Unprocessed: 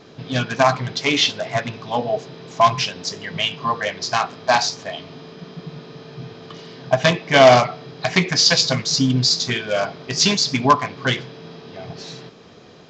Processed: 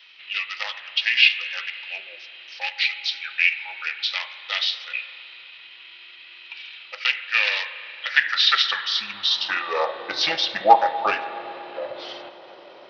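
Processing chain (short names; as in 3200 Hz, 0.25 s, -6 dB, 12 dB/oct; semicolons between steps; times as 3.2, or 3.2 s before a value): high shelf 5000 Hz -4 dB; in parallel at -1 dB: compressor 20:1, threshold -27 dBFS, peak gain reduction 21.5 dB; on the sum: pitch shift -4 st; high-pass sweep 2500 Hz -> 620 Hz, 7.77–10.09; spring tank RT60 2.9 s, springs 34/59 ms, chirp 60 ms, DRR 10.5 dB; gain -4 dB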